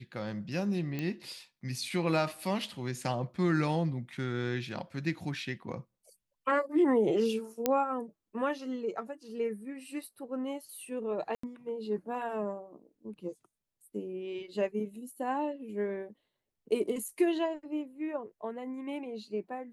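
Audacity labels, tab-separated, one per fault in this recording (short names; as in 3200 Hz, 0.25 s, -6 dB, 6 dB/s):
0.990000	0.990000	pop -21 dBFS
7.660000	7.660000	pop -12 dBFS
11.350000	11.430000	gap 84 ms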